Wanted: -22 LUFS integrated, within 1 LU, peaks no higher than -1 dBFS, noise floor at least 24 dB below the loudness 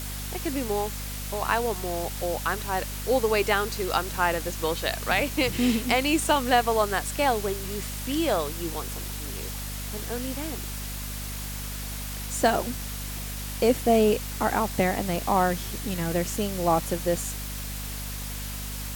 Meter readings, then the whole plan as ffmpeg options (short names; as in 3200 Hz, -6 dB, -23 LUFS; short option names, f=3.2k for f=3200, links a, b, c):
hum 50 Hz; harmonics up to 250 Hz; hum level -33 dBFS; noise floor -34 dBFS; noise floor target -51 dBFS; loudness -27.0 LUFS; peak -8.5 dBFS; loudness target -22.0 LUFS
-> -af "bandreject=f=50:t=h:w=6,bandreject=f=100:t=h:w=6,bandreject=f=150:t=h:w=6,bandreject=f=200:t=h:w=6,bandreject=f=250:t=h:w=6"
-af "afftdn=nr=17:nf=-34"
-af "volume=5dB"